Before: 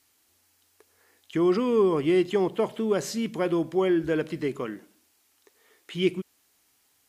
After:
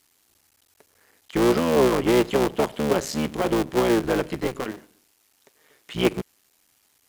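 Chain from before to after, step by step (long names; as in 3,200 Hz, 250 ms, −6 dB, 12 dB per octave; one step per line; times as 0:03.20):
sub-harmonics by changed cycles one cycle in 3, muted
level +4.5 dB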